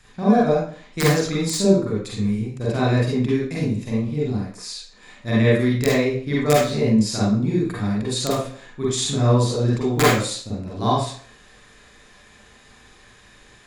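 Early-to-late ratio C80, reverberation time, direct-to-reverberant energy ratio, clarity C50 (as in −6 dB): 5.5 dB, 0.50 s, −7.0 dB, −0.5 dB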